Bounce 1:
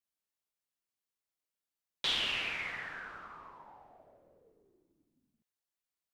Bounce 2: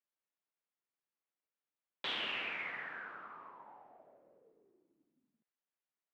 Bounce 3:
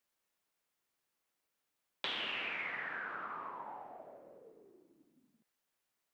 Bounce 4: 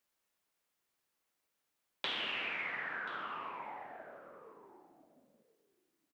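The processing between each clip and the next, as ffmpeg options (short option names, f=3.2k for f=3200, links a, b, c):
-filter_complex "[0:a]acrossover=split=160 3000:gain=0.1 1 0.112[a][b][c];[a][b][c]amix=inputs=3:normalize=0,volume=-1dB"
-af "acompressor=threshold=-49dB:ratio=3,volume=9.5dB"
-af "aecho=1:1:1033:0.141,volume=1dB"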